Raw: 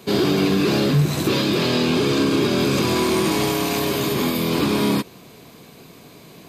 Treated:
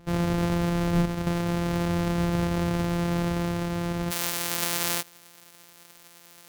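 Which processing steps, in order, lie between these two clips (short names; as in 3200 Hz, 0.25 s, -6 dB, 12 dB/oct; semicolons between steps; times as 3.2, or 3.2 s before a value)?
sample sorter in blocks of 256 samples; tilt -1.5 dB/oct, from 4.1 s +4 dB/oct; gain -9.5 dB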